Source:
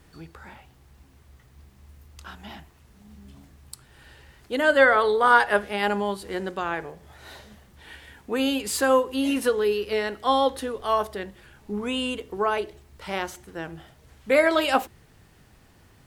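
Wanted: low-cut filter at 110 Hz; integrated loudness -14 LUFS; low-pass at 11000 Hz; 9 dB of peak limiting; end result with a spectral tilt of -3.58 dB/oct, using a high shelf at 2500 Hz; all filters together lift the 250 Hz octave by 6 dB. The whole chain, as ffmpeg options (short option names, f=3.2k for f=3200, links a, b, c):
-af "highpass=110,lowpass=11k,equalizer=f=250:t=o:g=7,highshelf=f=2.5k:g=-5.5,volume=10.5dB,alimiter=limit=-2.5dB:level=0:latency=1"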